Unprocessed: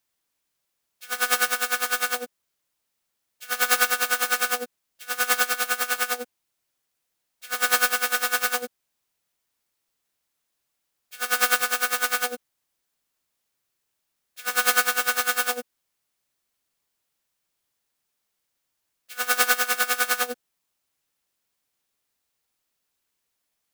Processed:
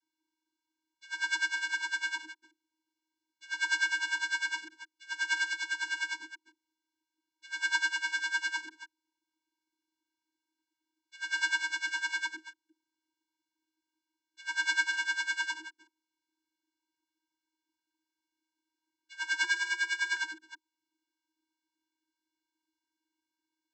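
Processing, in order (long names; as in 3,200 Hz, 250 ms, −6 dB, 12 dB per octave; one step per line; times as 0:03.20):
delay that plays each chunk backwards 167 ms, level −13 dB
channel vocoder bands 32, square 316 Hz
0:19.44–0:20.17: frequency shifter +28 Hz
level −6 dB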